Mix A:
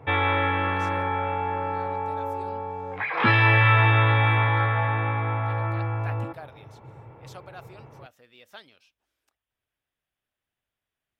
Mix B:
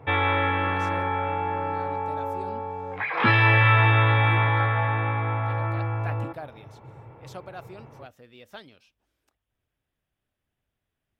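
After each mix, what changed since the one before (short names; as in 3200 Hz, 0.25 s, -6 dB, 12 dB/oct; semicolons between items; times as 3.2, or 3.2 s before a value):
speech: add low shelf 490 Hz +11 dB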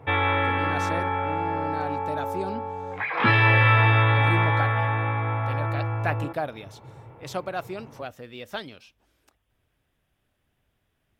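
speech +9.5 dB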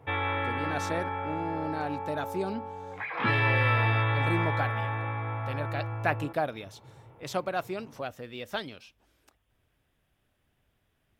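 background -7.0 dB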